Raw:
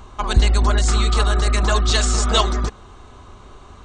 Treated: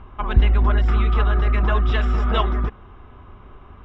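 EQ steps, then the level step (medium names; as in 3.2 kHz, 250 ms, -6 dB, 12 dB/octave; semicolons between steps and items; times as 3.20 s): Savitzky-Golay filter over 25 samples; distance through air 210 m; peaking EQ 610 Hz -3.5 dB 1.7 oct; 0.0 dB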